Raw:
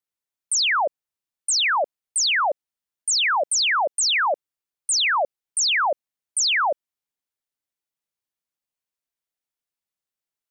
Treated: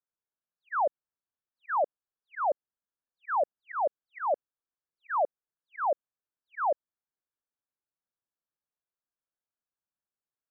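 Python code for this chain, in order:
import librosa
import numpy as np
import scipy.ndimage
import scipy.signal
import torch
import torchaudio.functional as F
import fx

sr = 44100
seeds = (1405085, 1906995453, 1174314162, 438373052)

y = scipy.signal.sosfilt(scipy.signal.cheby1(6, 1.0, 1700.0, 'lowpass', fs=sr, output='sos'), x)
y = fx.auto_swell(y, sr, attack_ms=135.0)
y = F.gain(torch.from_numpy(y), -3.0).numpy()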